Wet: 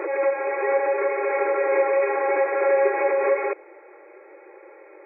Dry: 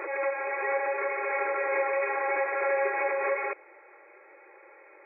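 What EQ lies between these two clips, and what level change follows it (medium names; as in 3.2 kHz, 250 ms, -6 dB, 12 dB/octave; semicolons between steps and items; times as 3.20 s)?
peaking EQ 360 Hz +11.5 dB 2.1 oct; 0.0 dB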